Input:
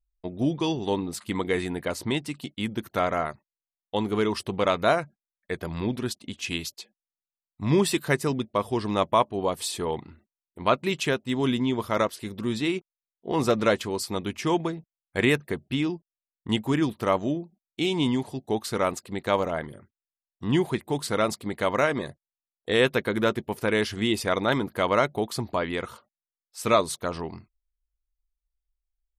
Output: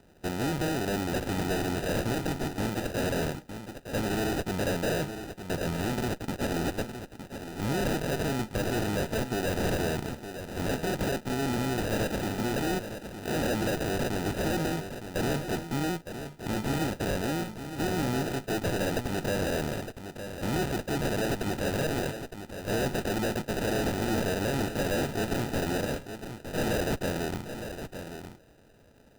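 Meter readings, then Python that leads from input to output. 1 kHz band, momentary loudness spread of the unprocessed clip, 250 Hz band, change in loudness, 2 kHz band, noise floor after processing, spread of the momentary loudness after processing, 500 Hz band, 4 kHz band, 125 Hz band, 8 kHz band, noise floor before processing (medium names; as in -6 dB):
-5.5 dB, 10 LU, -3.0 dB, -4.0 dB, -3.0 dB, -52 dBFS, 9 LU, -4.5 dB, -4.0 dB, +0.5 dB, -0.5 dB, under -85 dBFS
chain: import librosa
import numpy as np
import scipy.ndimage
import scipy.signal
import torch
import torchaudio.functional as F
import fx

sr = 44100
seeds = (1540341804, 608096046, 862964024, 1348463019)

p1 = fx.bin_compress(x, sr, power=0.6)
p2 = fx.high_shelf_res(p1, sr, hz=5200.0, db=11.0, q=3.0)
p3 = fx.tube_stage(p2, sr, drive_db=26.0, bias=0.6)
p4 = fx.sample_hold(p3, sr, seeds[0], rate_hz=1100.0, jitter_pct=0)
y = p4 + fx.echo_single(p4, sr, ms=912, db=-9.5, dry=0)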